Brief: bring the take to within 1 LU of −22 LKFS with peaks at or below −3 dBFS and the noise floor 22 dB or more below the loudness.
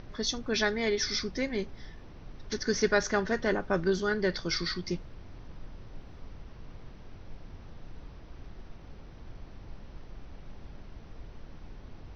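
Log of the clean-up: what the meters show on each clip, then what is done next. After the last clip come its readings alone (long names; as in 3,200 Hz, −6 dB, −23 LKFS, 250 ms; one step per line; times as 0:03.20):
background noise floor −48 dBFS; target noise floor −52 dBFS; integrated loudness −30.0 LKFS; sample peak −13.0 dBFS; target loudness −22.0 LKFS
→ noise reduction from a noise print 6 dB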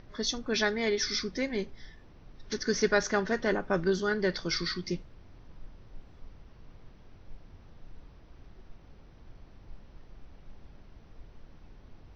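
background noise floor −54 dBFS; integrated loudness −30.0 LKFS; sample peak −13.0 dBFS; target loudness −22.0 LKFS
→ level +8 dB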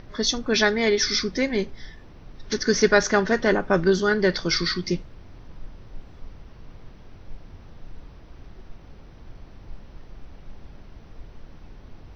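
integrated loudness −22.0 LKFS; sample peak −5.0 dBFS; background noise floor −46 dBFS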